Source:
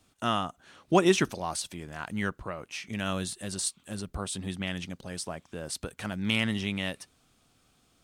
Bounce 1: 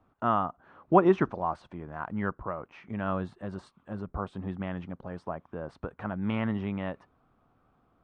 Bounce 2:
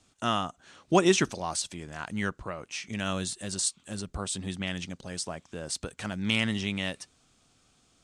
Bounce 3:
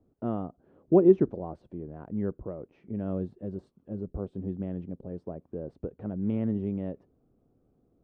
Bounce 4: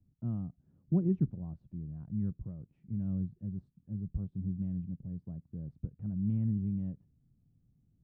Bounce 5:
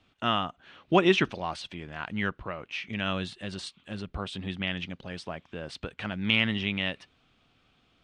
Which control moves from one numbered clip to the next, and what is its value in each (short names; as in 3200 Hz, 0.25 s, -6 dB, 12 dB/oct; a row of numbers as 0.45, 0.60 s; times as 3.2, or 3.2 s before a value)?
synth low-pass, frequency: 1100, 7500, 440, 150, 3000 Hz